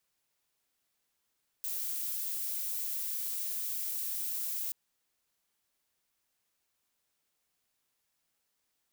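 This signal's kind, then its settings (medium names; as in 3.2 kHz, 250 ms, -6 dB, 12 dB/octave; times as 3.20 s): noise violet, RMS -35.5 dBFS 3.08 s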